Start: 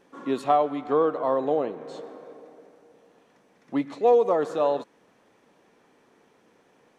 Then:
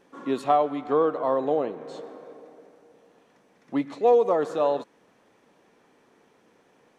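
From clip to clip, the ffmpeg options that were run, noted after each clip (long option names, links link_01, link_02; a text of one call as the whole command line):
ffmpeg -i in.wav -af anull out.wav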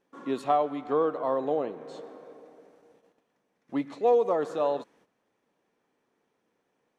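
ffmpeg -i in.wav -af "agate=range=-11dB:threshold=-56dB:ratio=16:detection=peak,volume=-3.5dB" out.wav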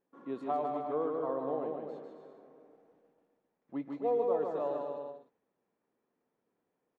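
ffmpeg -i in.wav -filter_complex "[0:a]lowpass=frequency=1200:poles=1,asplit=2[link_01][link_02];[link_02]aecho=0:1:150|262.5|346.9|410.2|457.6:0.631|0.398|0.251|0.158|0.1[link_03];[link_01][link_03]amix=inputs=2:normalize=0,volume=-8dB" out.wav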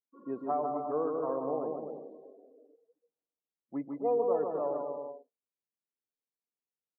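ffmpeg -i in.wav -af "afftdn=noise_reduction=28:noise_floor=-50,volume=1.5dB" out.wav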